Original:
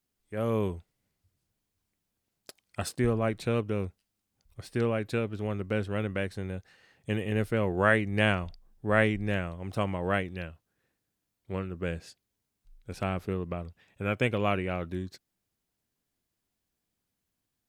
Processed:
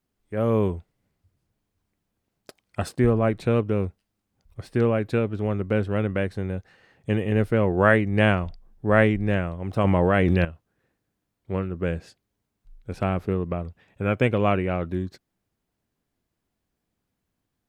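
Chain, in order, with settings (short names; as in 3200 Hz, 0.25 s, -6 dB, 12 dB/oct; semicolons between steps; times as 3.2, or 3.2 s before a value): high shelf 2500 Hz -10.5 dB; 9.84–10.45 fast leveller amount 100%; gain +7 dB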